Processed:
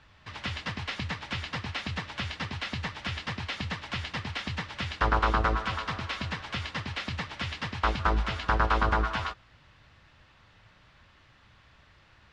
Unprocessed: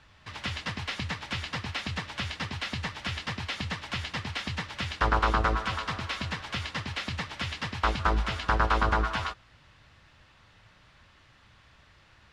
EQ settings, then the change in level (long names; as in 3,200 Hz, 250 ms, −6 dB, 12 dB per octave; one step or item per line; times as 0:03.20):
high-frequency loss of the air 53 metres
0.0 dB